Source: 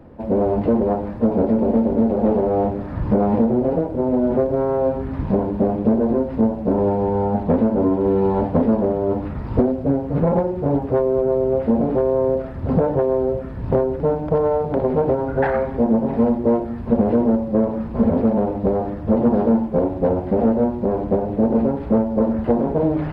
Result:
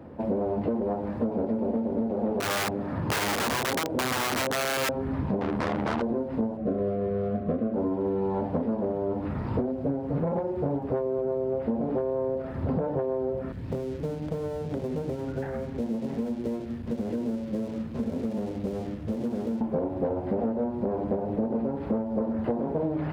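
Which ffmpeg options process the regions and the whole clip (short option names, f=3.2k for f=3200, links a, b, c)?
-filter_complex "[0:a]asettb=1/sr,asplit=3[a][b][c];[a]atrim=end=2.404[d];[b]atrim=start=2.4:end=4.89,asetpts=PTS-STARTPTS,afade=t=in:d=0.004:c=qsin,afade=t=out:st=2.486:d=0.004:c=qsin,highpass=100,aeval=exprs='(mod(5.96*val(0)+1,2)-1)/5.96':c=same[e];[c]atrim=start=4.886[f];[d][e]acrossfade=d=0.004:c1=hsin:c2=qsin[g];[g][f]acrossfade=d=0.004:c1=qsin:c2=hsin,asettb=1/sr,asplit=3[h][i][j];[h]atrim=end=5.414[k];[i]atrim=start=5.41:end=6.02,asetpts=PTS-STARTPTS,afade=t=in:d=0.004:c=qsin,afade=t=out:st=0.606:d=0.004:c=qsin,aeval=exprs='0.473*sin(PI/2*3.98*val(0)/0.473)':c=same,aeval=exprs='(tanh(5.01*val(0)+0.35)-tanh(0.35))/5.01':c=same,tremolo=f=77:d=0.75[l];[j]atrim=start=6.016[m];[k][l]acrossfade=d=0.004:c1=hsin:c2=qsin[n];[n][m]acrossfade=d=0.004:c1=qsin:c2=hsin,asettb=1/sr,asplit=3[o][p][q];[o]atrim=end=6.574[r];[p]atrim=start=6.57:end=7.74,asetpts=PTS-STARTPTS,afade=t=in:d=0.004:c=qsin,afade=t=out:st=1.166:d=0.004:c=qsin,bandreject=f=60:t=h:w=6,bandreject=f=120:t=h:w=6,bandreject=f=180:t=h:w=6,bandreject=f=240:t=h:w=6,bandreject=f=300:t=h:w=6,bandreject=f=360:t=h:w=6,bandreject=f=420:t=h:w=6,adynamicsmooth=sensitivity=1.5:basefreq=2.1k,asuperstop=centerf=890:order=20:qfactor=3.7[s];[q]atrim=start=7.736[t];[r][s]acrossfade=d=0.004:c1=hsin:c2=qsin[u];[u][t]acrossfade=d=0.004:c1=qsin:c2=hsin,asettb=1/sr,asplit=3[v][w][x];[v]atrim=end=13.524[y];[w]atrim=start=13.52:end=19.61,asetpts=PTS-STARTPTS,afade=t=in:d=0.004:c=qsin,afade=t=out:st=6.086:d=0.004:c=qsin,aeval=exprs='sgn(val(0))*max(abs(val(0))-0.01,0)':c=same,acrossover=split=270|1500[z][aa][ab];[z]acompressor=threshold=-30dB:ratio=4[ac];[aa]acompressor=threshold=-24dB:ratio=4[ad];[ab]acompressor=threshold=-47dB:ratio=4[ae];[ac][ad][ae]amix=inputs=3:normalize=0,equalizer=f=870:w=0.62:g=-12.5[af];[x]atrim=start=19.606[ag];[y][af]acrossfade=d=0.004:c1=hsin:c2=qsin[ah];[ah][ag]acrossfade=d=0.004:c1=qsin:c2=hsin,highpass=76,bandreject=f=60:t=h:w=6,bandreject=f=120:t=h:w=6,bandreject=f=180:t=h:w=6,acompressor=threshold=-25dB:ratio=6"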